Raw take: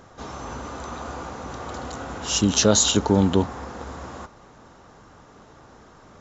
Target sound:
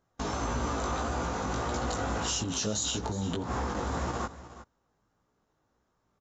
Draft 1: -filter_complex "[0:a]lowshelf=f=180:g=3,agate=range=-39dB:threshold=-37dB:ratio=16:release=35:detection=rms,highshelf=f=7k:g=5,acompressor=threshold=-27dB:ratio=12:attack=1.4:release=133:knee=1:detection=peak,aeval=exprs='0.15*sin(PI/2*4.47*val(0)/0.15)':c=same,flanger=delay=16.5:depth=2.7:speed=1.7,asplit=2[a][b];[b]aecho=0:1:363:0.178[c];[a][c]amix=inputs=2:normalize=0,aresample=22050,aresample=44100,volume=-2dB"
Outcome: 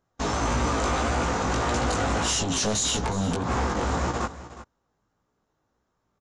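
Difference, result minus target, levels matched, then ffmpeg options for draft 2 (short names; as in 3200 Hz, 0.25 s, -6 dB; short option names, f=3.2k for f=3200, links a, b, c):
compressor: peak gain reduction -10 dB
-filter_complex "[0:a]lowshelf=f=180:g=3,agate=range=-39dB:threshold=-37dB:ratio=16:release=35:detection=rms,highshelf=f=7k:g=5,acompressor=threshold=-38dB:ratio=12:attack=1.4:release=133:knee=1:detection=peak,aeval=exprs='0.15*sin(PI/2*4.47*val(0)/0.15)':c=same,flanger=delay=16.5:depth=2.7:speed=1.7,asplit=2[a][b];[b]aecho=0:1:363:0.178[c];[a][c]amix=inputs=2:normalize=0,aresample=22050,aresample=44100,volume=-2dB"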